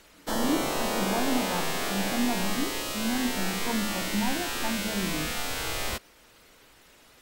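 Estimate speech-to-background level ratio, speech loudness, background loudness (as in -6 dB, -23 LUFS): -2.5 dB, -32.5 LUFS, -30.0 LUFS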